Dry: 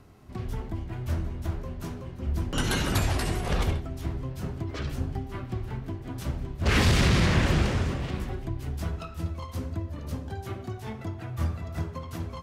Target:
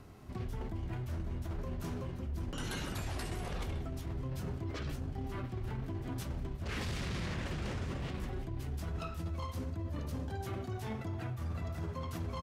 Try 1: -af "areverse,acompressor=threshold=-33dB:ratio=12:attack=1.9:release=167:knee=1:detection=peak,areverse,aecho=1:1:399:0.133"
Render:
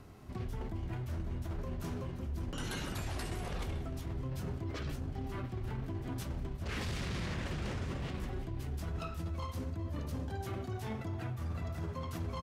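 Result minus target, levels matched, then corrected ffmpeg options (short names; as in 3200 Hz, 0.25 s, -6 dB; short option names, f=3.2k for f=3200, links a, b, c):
echo-to-direct +8 dB
-af "areverse,acompressor=threshold=-33dB:ratio=12:attack=1.9:release=167:knee=1:detection=peak,areverse,aecho=1:1:399:0.0531"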